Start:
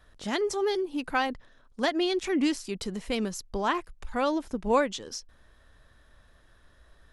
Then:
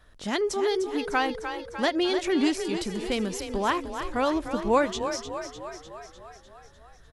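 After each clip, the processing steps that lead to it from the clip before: frequency-shifting echo 0.301 s, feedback 62%, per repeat +31 Hz, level -9 dB; gain +1.5 dB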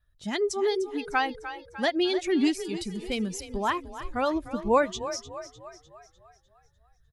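per-bin expansion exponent 1.5; wow and flutter 17 cents; gain +1.5 dB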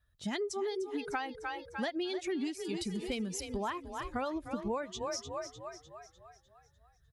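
HPF 48 Hz; compressor 12:1, threshold -32 dBFS, peak gain reduction 16.5 dB

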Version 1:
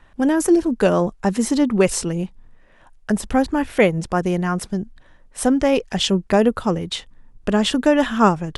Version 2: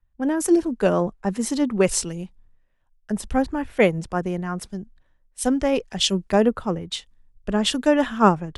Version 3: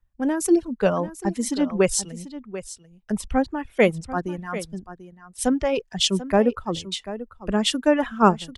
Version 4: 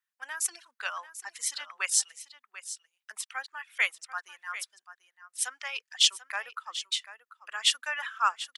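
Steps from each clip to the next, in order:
three-band expander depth 70%; gain -4 dB
reverb removal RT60 1.8 s; echo 0.74 s -14 dB
HPF 1300 Hz 24 dB/oct

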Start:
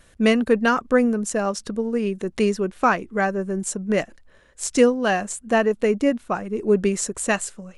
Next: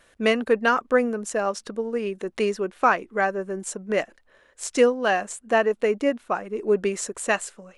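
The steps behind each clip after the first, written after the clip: tone controls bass -13 dB, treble -5 dB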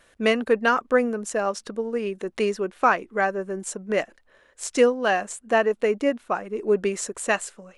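nothing audible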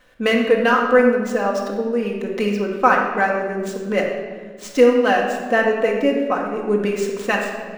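median filter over 5 samples; shoebox room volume 1700 m³, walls mixed, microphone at 2 m; gain +1.5 dB

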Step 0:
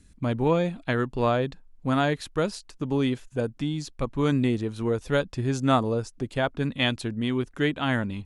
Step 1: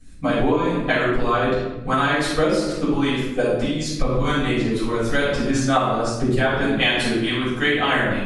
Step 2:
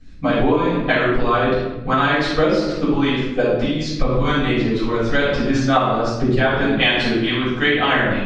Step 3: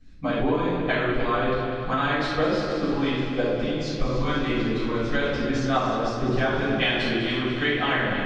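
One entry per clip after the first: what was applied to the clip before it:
harmonic-percussive split harmonic -16 dB; reverb RT60 0.95 s, pre-delay 4 ms, DRR -11.5 dB; compressor 6:1, threshold -15 dBFS, peak gain reduction 10 dB
LPF 5300 Hz 24 dB/oct; gain +2.5 dB
multi-head echo 0.1 s, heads second and third, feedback 61%, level -10 dB; gain -7.5 dB

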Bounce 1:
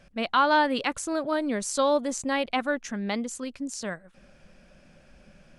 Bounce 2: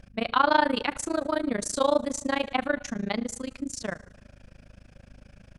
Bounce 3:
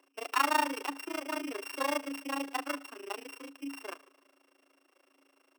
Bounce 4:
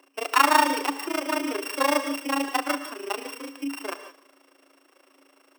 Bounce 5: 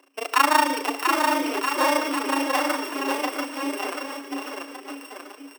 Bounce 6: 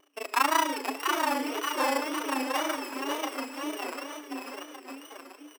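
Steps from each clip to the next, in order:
hum 50 Hz, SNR 22 dB; plate-style reverb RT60 1.1 s, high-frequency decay 0.8×, DRR 14 dB; AM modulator 27 Hz, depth 95%; gain +3.5 dB
sample sorter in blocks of 16 samples; rippled Chebyshev high-pass 270 Hz, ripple 9 dB; gain -2 dB
non-linear reverb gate 0.19 s rising, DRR 11 dB; gain +9 dB
bouncing-ball echo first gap 0.69 s, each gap 0.85×, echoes 5
wow and flutter 120 cents; gain -6 dB

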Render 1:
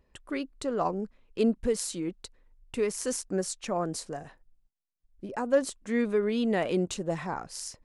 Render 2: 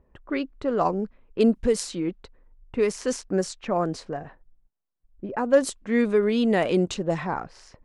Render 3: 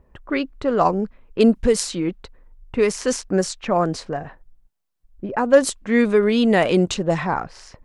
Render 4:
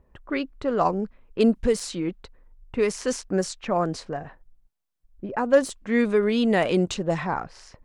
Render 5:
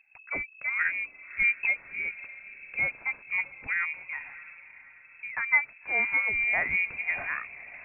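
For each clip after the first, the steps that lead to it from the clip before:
low-pass opened by the level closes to 1200 Hz, open at -22 dBFS; gain +5.5 dB
bell 340 Hz -3 dB 1.8 oct; gain +7 dB
de-esser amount 45%; gain -4.5 dB
diffused feedback echo 0.6 s, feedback 46%, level -16 dB; inverted band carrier 2600 Hz; gain -6 dB

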